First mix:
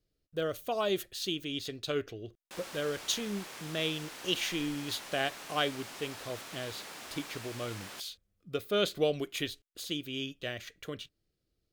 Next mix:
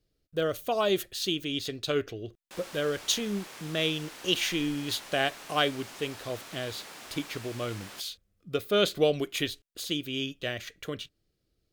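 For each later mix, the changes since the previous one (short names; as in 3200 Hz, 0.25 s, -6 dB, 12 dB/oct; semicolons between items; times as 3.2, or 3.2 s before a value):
speech +4.5 dB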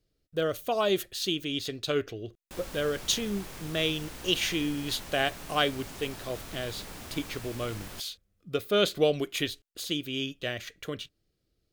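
background: remove weighting filter A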